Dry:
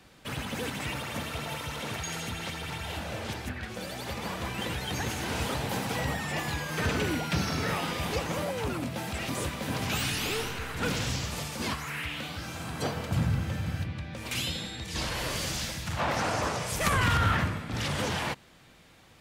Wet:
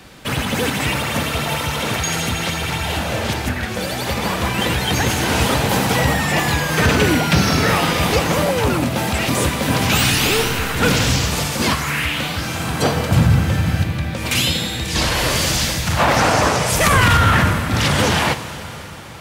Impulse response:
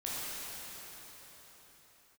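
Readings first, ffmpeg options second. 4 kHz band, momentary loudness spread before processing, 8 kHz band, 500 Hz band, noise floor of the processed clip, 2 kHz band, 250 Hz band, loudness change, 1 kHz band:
+14.0 dB, 7 LU, +14.5 dB, +14.0 dB, -29 dBFS, +14.0 dB, +14.0 dB, +14.0 dB, +14.0 dB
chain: -filter_complex "[0:a]asplit=2[s0][s1];[1:a]atrim=start_sample=2205,highshelf=f=10000:g=11.5[s2];[s1][s2]afir=irnorm=-1:irlink=0,volume=0.178[s3];[s0][s3]amix=inputs=2:normalize=0,alimiter=level_in=6.31:limit=0.891:release=50:level=0:latency=1,volume=0.708"

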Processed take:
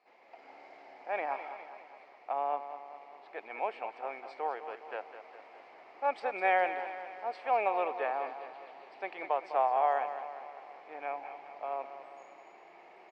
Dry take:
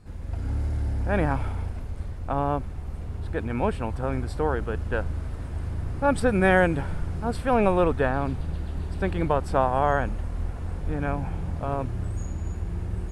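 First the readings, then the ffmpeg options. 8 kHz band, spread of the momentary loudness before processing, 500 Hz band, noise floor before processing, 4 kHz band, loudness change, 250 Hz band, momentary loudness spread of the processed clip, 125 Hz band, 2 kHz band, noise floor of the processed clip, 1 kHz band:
under -25 dB, 12 LU, -9.5 dB, -35 dBFS, -10.0 dB, -7.5 dB, -25.0 dB, 23 LU, under -40 dB, -8.5 dB, -56 dBFS, -3.5 dB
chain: -filter_complex "[0:a]highpass=f=480:w=0.5412,highpass=f=480:w=1.3066,equalizer=f=500:t=q:w=4:g=-4,equalizer=f=750:t=q:w=4:g=7,equalizer=f=1500:t=q:w=4:g=-9,equalizer=f=2200:t=q:w=4:g=9,equalizer=f=3600:t=q:w=4:g=-6,lowpass=f=4500:w=0.5412,lowpass=f=4500:w=1.3066,asplit=2[s0][s1];[s1]aecho=0:1:204|408|612|816|1020|1224:0.282|0.155|0.0853|0.0469|0.0258|0.0142[s2];[s0][s2]amix=inputs=2:normalize=0,volume=0.422"

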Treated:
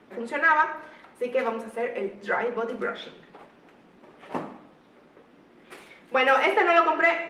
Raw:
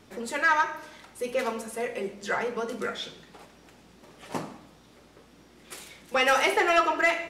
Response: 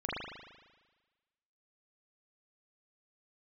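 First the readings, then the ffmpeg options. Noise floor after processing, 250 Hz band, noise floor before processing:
-56 dBFS, +2.0 dB, -56 dBFS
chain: -filter_complex "[0:a]acrossover=split=160 3100:gain=0.1 1 0.158[s0][s1][s2];[s0][s1][s2]amix=inputs=3:normalize=0,volume=1.41" -ar 48000 -c:a libopus -b:a 32k

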